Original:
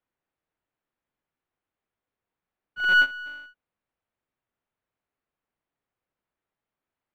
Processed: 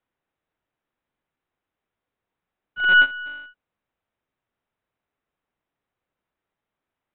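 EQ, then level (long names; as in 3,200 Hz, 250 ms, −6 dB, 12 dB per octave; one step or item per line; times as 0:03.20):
linear-phase brick-wall low-pass 4,000 Hz
+4.0 dB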